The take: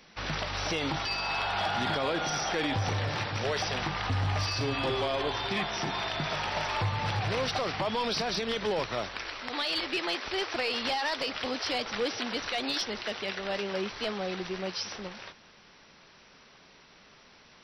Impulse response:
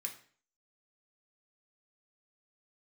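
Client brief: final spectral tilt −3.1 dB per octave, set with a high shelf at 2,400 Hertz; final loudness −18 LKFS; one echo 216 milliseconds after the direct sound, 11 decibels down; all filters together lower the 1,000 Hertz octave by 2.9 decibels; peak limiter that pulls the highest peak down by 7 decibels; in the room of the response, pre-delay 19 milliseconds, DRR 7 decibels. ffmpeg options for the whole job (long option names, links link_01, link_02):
-filter_complex "[0:a]equalizer=frequency=1000:width_type=o:gain=-5,highshelf=frequency=2400:gain=6,alimiter=level_in=1dB:limit=-24dB:level=0:latency=1,volume=-1dB,aecho=1:1:216:0.282,asplit=2[link_01][link_02];[1:a]atrim=start_sample=2205,adelay=19[link_03];[link_02][link_03]afir=irnorm=-1:irlink=0,volume=-5.5dB[link_04];[link_01][link_04]amix=inputs=2:normalize=0,volume=13.5dB"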